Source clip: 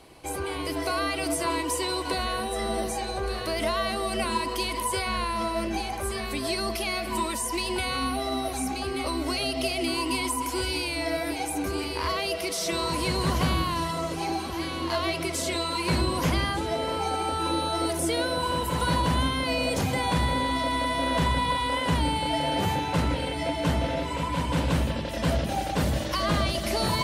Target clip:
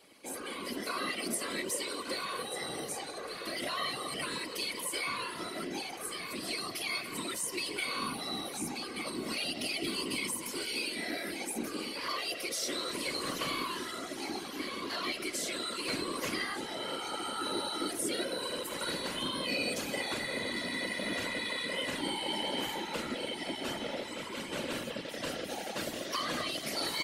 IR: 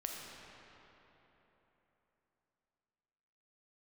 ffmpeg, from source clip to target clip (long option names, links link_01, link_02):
-af "highpass=350,equalizer=frequency=820:width_type=o:width=0.82:gain=-10,aecho=1:1:3.6:0.71,afftfilt=real='hypot(re,im)*cos(2*PI*random(0))':imag='hypot(re,im)*sin(2*PI*random(1))':win_size=512:overlap=0.75"